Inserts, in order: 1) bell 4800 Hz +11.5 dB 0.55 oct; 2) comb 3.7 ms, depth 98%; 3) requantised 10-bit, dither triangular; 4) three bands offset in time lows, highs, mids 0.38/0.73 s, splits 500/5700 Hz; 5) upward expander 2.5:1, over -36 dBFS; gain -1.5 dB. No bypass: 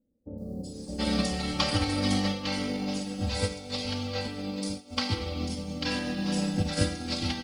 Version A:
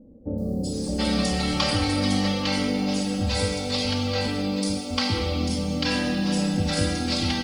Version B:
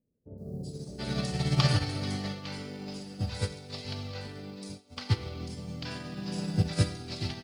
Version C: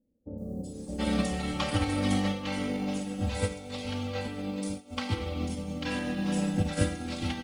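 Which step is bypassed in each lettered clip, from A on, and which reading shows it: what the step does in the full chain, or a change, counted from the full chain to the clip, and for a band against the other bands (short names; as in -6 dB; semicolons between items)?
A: 5, crest factor change -3.5 dB; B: 2, 125 Hz band +8.0 dB; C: 1, 4 kHz band -6.0 dB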